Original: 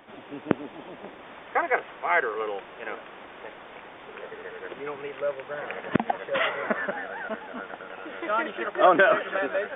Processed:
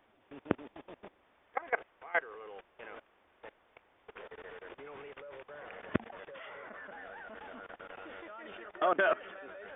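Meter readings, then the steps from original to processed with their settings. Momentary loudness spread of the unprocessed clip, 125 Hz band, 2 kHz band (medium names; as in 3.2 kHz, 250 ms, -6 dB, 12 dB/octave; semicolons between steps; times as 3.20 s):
21 LU, -8.0 dB, -10.5 dB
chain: resonant low shelf 110 Hz +7 dB, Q 1.5; level held to a coarse grid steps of 21 dB; trim -5.5 dB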